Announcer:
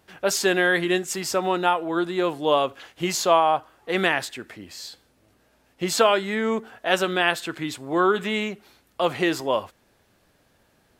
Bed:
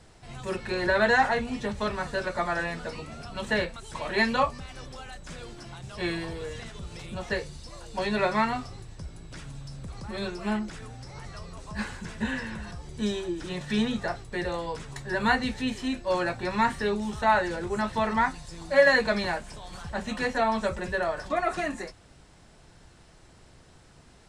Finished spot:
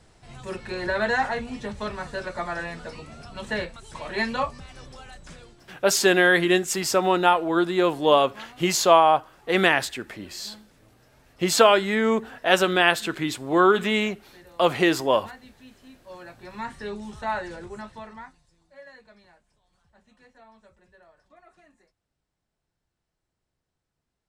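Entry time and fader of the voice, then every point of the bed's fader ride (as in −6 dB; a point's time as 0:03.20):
5.60 s, +2.5 dB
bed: 0:05.28 −2 dB
0:05.92 −20 dB
0:15.87 −20 dB
0:16.91 −6 dB
0:17.60 −6 dB
0:18.75 −28 dB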